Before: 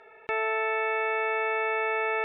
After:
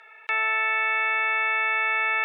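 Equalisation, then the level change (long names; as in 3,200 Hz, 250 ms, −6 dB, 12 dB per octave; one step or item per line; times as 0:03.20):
high-pass filter 1,400 Hz 12 dB per octave
+8.0 dB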